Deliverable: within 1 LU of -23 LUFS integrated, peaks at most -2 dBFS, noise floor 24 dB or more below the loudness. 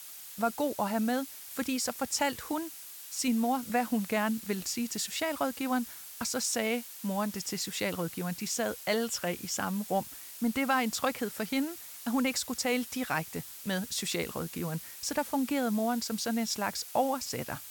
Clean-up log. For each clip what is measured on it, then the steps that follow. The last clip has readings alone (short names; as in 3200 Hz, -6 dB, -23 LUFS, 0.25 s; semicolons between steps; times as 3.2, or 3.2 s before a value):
noise floor -46 dBFS; noise floor target -56 dBFS; loudness -32.0 LUFS; peak -17.0 dBFS; loudness target -23.0 LUFS
-> denoiser 10 dB, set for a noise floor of -46 dBFS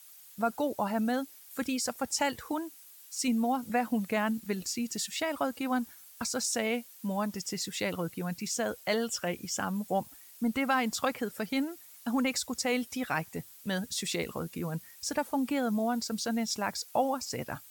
noise floor -53 dBFS; noise floor target -56 dBFS
-> denoiser 6 dB, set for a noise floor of -53 dBFS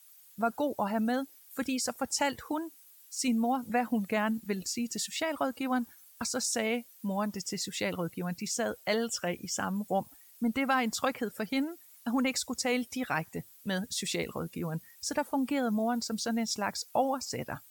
noise floor -57 dBFS; loudness -32.5 LUFS; peak -17.5 dBFS; loudness target -23.0 LUFS
-> gain +9.5 dB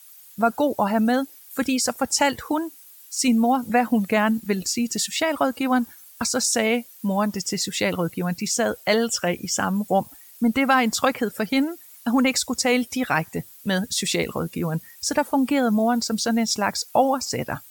loudness -23.0 LUFS; peak -8.0 dBFS; noise floor -47 dBFS